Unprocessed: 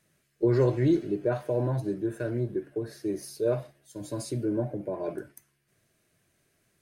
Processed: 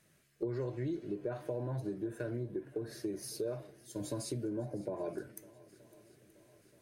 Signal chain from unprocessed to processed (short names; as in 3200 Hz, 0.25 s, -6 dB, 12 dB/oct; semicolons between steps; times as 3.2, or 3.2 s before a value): compressor 6:1, threshold -36 dBFS, peak gain reduction 16 dB; on a send: swung echo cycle 0.927 s, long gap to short 1.5:1, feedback 51%, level -22 dB; on the sum: gain +1 dB